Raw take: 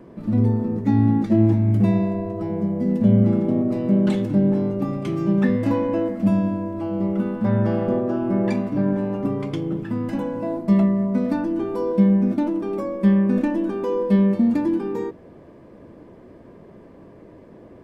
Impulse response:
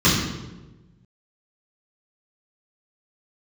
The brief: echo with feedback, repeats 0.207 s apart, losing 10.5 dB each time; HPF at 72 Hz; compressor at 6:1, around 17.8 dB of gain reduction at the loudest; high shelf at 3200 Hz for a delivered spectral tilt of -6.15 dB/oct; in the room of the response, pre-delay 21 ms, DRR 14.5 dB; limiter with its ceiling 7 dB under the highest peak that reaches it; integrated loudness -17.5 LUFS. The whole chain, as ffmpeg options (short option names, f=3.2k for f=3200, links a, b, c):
-filter_complex "[0:a]highpass=72,highshelf=f=3.2k:g=-6.5,acompressor=threshold=-32dB:ratio=6,alimiter=level_in=5dB:limit=-24dB:level=0:latency=1,volume=-5dB,aecho=1:1:207|414|621:0.299|0.0896|0.0269,asplit=2[a][b];[1:a]atrim=start_sample=2205,adelay=21[c];[b][c]afir=irnorm=-1:irlink=0,volume=-35dB[d];[a][d]amix=inputs=2:normalize=0,volume=19.5dB"